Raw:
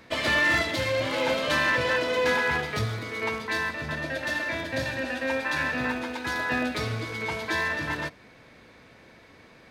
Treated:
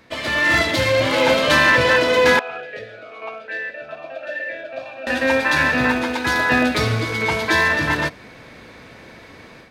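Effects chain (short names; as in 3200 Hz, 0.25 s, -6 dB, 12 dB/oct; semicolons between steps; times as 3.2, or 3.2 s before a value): AGC gain up to 10.5 dB; 2.39–5.07 vowel sweep a-e 1.2 Hz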